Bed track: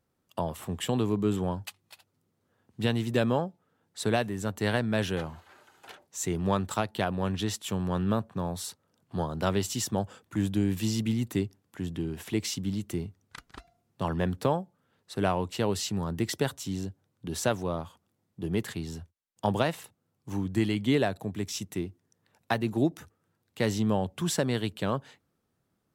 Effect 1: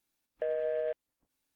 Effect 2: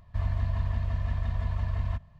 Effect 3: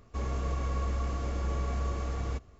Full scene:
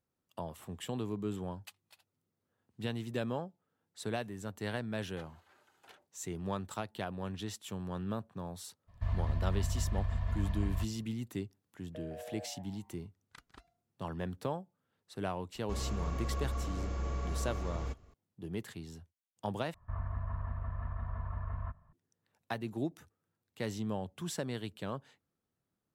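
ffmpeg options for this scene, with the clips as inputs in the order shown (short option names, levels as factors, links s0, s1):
-filter_complex "[2:a]asplit=2[s0][s1];[0:a]volume=0.316[s2];[1:a]asplit=6[s3][s4][s5][s6][s7][s8];[s4]adelay=162,afreqshift=100,volume=0.501[s9];[s5]adelay=324,afreqshift=200,volume=0.191[s10];[s6]adelay=486,afreqshift=300,volume=0.0724[s11];[s7]adelay=648,afreqshift=400,volume=0.0275[s12];[s8]adelay=810,afreqshift=500,volume=0.0105[s13];[s3][s9][s10][s11][s12][s13]amix=inputs=6:normalize=0[s14];[s1]lowpass=f=1300:t=q:w=3.4[s15];[s2]asplit=2[s16][s17];[s16]atrim=end=19.744[s18];[s15]atrim=end=2.19,asetpts=PTS-STARTPTS,volume=0.335[s19];[s17]atrim=start=21.926[s20];[s0]atrim=end=2.19,asetpts=PTS-STARTPTS,volume=0.596,afade=t=in:d=0.02,afade=t=out:st=2.17:d=0.02,adelay=8870[s21];[s14]atrim=end=1.55,asetpts=PTS-STARTPTS,volume=0.178,afade=t=in:d=0.004:c=hsin,afade=t=out:st=1.546:d=0.004:c=hsin,adelay=11530[s22];[3:a]atrim=end=2.59,asetpts=PTS-STARTPTS,volume=0.596,afade=t=in:d=0.004:c=hsin,afade=t=out:st=2.586:d=0.004:c=hsin,adelay=15550[s23];[s18][s19]acrossfade=d=0.004:c1=hsin:c2=hsin[s24];[s24][s20]acrossfade=d=0.004:c1=hsin:c2=hsin[s25];[s25][s21][s22][s23]amix=inputs=4:normalize=0"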